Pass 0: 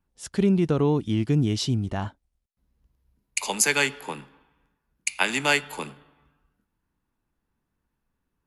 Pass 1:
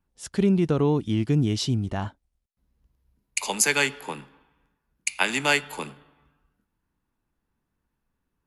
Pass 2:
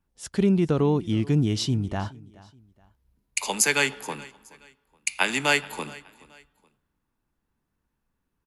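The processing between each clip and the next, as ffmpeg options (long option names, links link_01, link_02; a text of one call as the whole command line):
ffmpeg -i in.wav -af anull out.wav
ffmpeg -i in.wav -af "aecho=1:1:424|848:0.0841|0.0286" out.wav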